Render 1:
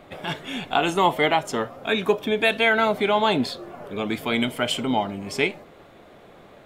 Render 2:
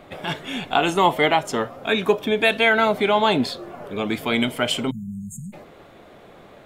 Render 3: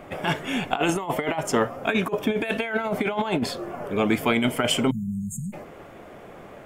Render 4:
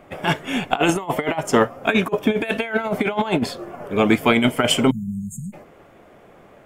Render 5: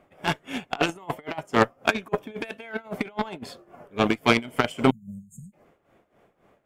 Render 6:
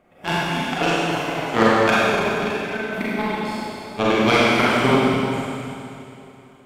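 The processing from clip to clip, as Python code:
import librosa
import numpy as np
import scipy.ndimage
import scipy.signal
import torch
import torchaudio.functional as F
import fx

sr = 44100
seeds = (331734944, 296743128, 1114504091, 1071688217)

y1 = fx.spec_erase(x, sr, start_s=4.9, length_s=0.63, low_hz=230.0, high_hz=6400.0)
y1 = y1 * 10.0 ** (2.0 / 20.0)
y2 = fx.peak_eq(y1, sr, hz=3900.0, db=-11.5, octaves=0.41)
y2 = fx.over_compress(y2, sr, threshold_db=-22.0, ratio=-0.5)
y3 = fx.upward_expand(y2, sr, threshold_db=-41.0, expansion=1.5)
y3 = y3 * 10.0 ** (6.5 / 20.0)
y4 = y3 * (1.0 - 0.79 / 2.0 + 0.79 / 2.0 * np.cos(2.0 * np.pi * 3.7 * (np.arange(len(y3)) / sr)))
y4 = fx.cheby_harmonics(y4, sr, harmonics=(7,), levels_db=(-20,), full_scale_db=-1.0)
y5 = fx.rev_schroeder(y4, sr, rt60_s=2.8, comb_ms=32, drr_db=-8.5)
y5 = y5 * 10.0 ** (-1.5 / 20.0)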